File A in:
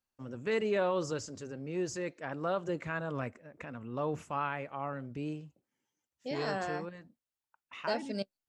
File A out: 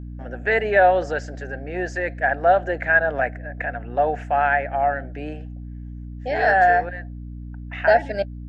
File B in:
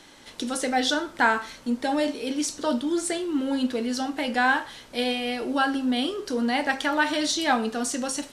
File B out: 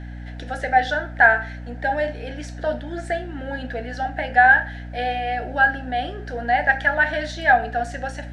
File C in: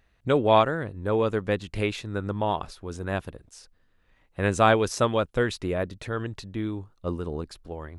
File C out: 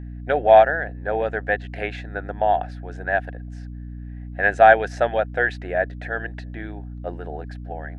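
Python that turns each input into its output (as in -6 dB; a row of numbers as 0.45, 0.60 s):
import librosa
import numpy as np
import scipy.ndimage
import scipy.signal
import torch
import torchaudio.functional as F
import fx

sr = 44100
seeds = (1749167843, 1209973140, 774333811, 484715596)

y = fx.double_bandpass(x, sr, hz=1100.0, octaves=1.2)
y = fx.add_hum(y, sr, base_hz=60, snr_db=12)
y = y * 10.0 ** (-22 / 20.0) / np.sqrt(np.mean(np.square(y)))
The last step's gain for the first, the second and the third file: +24.5, +12.5, +14.5 dB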